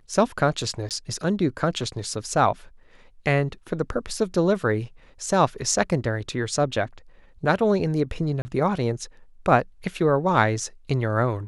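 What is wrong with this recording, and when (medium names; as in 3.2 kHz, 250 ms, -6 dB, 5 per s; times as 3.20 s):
0.89–0.91 s: dropout 18 ms
8.42–8.45 s: dropout 30 ms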